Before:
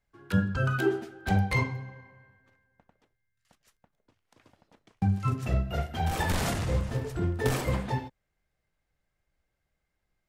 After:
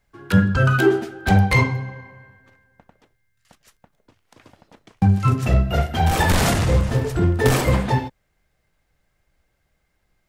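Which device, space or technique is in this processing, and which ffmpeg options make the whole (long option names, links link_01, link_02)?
parallel distortion: -filter_complex "[0:a]asplit=2[link_01][link_02];[link_02]asoftclip=type=hard:threshold=-25.5dB,volume=-7.5dB[link_03];[link_01][link_03]amix=inputs=2:normalize=0,volume=8dB"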